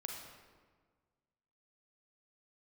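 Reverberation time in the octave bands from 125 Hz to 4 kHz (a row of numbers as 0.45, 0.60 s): 2.0, 1.8, 1.6, 1.5, 1.2, 0.95 s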